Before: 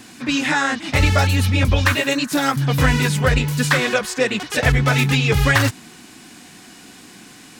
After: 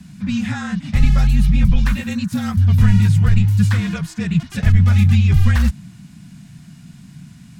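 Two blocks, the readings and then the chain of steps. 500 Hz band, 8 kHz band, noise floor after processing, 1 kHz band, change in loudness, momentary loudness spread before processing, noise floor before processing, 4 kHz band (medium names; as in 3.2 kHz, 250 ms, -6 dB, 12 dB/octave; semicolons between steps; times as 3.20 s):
-16.5 dB, no reading, -42 dBFS, -11.0 dB, +1.5 dB, 4 LU, -44 dBFS, -10.5 dB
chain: resonant low shelf 310 Hz +13.5 dB, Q 3; frequency shift -45 Hz; trim -10 dB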